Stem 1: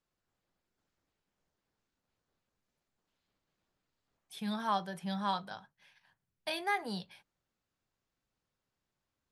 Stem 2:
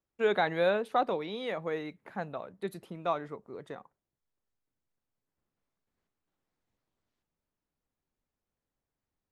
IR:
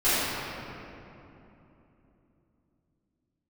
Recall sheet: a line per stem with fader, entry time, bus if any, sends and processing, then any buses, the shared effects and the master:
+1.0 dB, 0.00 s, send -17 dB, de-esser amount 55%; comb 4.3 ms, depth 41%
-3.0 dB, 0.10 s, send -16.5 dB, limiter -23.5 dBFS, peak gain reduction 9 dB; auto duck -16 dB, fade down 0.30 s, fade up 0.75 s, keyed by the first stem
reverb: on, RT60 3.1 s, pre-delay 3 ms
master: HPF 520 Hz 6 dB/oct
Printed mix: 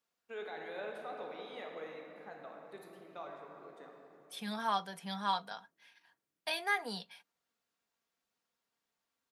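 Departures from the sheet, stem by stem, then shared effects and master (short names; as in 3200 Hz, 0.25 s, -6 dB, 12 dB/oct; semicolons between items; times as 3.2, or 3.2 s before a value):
stem 1: send off; stem 2 -3.0 dB -> -12.0 dB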